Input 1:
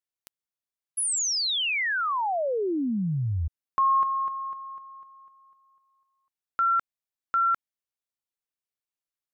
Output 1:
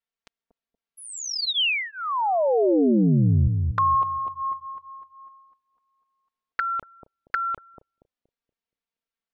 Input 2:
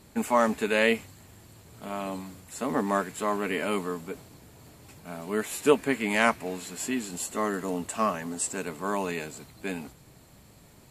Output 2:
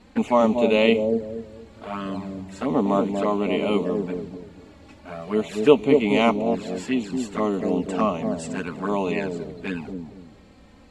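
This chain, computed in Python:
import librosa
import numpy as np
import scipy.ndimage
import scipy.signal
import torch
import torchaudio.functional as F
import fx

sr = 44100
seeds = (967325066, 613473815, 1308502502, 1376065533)

y = scipy.signal.sosfilt(scipy.signal.butter(2, 3900.0, 'lowpass', fs=sr, output='sos'), x)
y = fx.env_flanger(y, sr, rest_ms=4.4, full_db=-26.0)
y = fx.echo_bbd(y, sr, ms=236, stages=1024, feedback_pct=30, wet_db=-3.5)
y = y * librosa.db_to_amplitude(7.0)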